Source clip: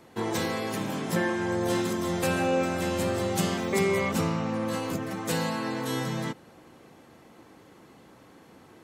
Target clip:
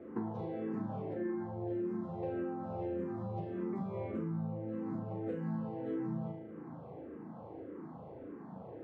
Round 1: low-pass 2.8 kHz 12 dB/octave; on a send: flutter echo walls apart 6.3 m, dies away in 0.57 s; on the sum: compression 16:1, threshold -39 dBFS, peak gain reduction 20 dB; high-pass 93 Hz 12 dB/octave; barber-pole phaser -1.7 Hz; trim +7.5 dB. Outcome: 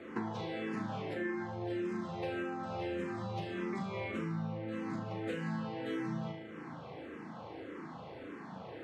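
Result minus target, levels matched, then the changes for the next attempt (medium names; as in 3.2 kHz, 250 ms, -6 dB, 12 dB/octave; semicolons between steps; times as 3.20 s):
2 kHz band +13.0 dB
change: low-pass 750 Hz 12 dB/octave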